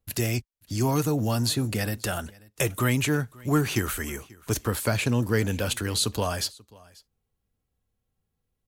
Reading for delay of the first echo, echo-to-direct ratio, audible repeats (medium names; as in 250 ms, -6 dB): 537 ms, -24.0 dB, 1